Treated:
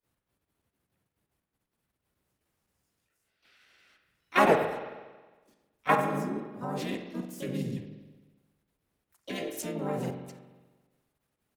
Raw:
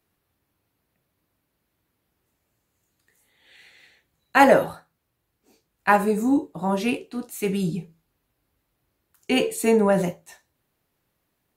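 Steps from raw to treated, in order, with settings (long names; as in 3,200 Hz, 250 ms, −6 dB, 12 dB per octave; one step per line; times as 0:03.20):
output level in coarse steps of 15 dB
spring reverb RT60 1.3 s, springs 45 ms, chirp 25 ms, DRR 6 dB
pitch-shifted copies added −5 semitones 0 dB, +5 semitones −2 dB, +7 semitones −16 dB
level −8 dB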